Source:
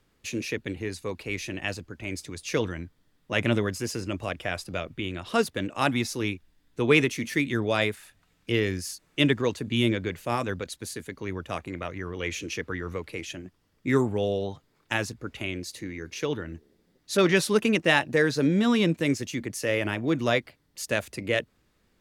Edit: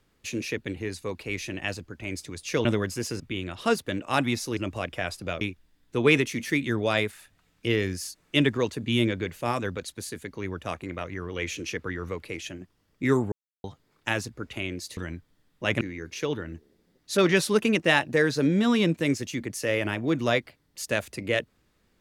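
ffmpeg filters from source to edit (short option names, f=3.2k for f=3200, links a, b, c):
-filter_complex "[0:a]asplit=9[a][b][c][d][e][f][g][h][i];[a]atrim=end=2.652[j];[b]atrim=start=3.488:end=4.042[k];[c]atrim=start=4.878:end=6.252[l];[d]atrim=start=4.038:end=4.882[m];[e]atrim=start=6.248:end=14.16,asetpts=PTS-STARTPTS,afade=t=out:st=7.908:d=0.004:c=hsin[n];[f]atrim=start=14.16:end=14.48,asetpts=PTS-STARTPTS,volume=0[o];[g]atrim=start=14.48:end=15.812,asetpts=PTS-STARTPTS,afade=t=in:d=0.004:c=hsin[p];[h]atrim=start=2.648:end=3.492[q];[i]atrim=start=15.808[r];[j][k]acrossfade=d=0.004:c1=hsin:c2=hsin[s];[s][l]acrossfade=d=0.004:c1=hsin:c2=hsin[t];[t][m]acrossfade=d=0.004:c1=hsin:c2=hsin[u];[n][o][p]concat=n=3:v=0:a=1[v];[u][v]acrossfade=d=0.004:c1=hsin:c2=hsin[w];[w][q]acrossfade=d=0.004:c1=hsin:c2=hsin[x];[x][r]acrossfade=d=0.004:c1=hsin:c2=hsin"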